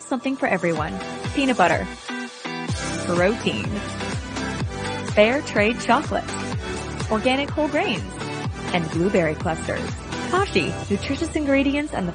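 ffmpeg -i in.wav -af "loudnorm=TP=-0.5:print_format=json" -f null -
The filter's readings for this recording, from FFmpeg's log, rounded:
"input_i" : "-23.0",
"input_tp" : "-1.5",
"input_lra" : "2.6",
"input_thresh" : "-33.0",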